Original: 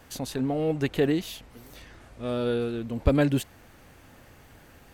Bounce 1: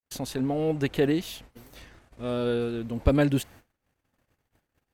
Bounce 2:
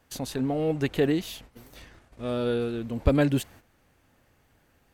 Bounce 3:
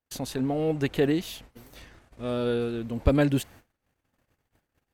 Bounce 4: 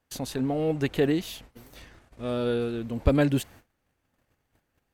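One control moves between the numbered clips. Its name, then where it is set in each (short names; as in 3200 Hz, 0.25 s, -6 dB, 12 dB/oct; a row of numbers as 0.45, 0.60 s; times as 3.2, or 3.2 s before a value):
gate, range: -55, -12, -38, -24 dB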